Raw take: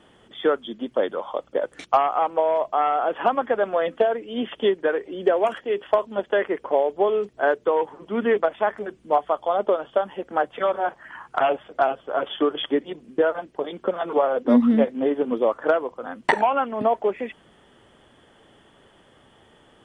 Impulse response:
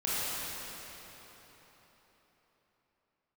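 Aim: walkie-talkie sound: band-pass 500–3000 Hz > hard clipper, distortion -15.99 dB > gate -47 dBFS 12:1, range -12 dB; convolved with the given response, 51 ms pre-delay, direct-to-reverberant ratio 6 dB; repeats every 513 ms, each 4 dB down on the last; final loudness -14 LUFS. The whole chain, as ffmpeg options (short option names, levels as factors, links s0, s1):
-filter_complex "[0:a]aecho=1:1:513|1026|1539|2052|2565|3078|3591|4104|4617:0.631|0.398|0.25|0.158|0.0994|0.0626|0.0394|0.0249|0.0157,asplit=2[s0][s1];[1:a]atrim=start_sample=2205,adelay=51[s2];[s1][s2]afir=irnorm=-1:irlink=0,volume=0.168[s3];[s0][s3]amix=inputs=2:normalize=0,highpass=500,lowpass=3000,asoftclip=type=hard:threshold=0.168,agate=range=0.251:threshold=0.00447:ratio=12,volume=2.99"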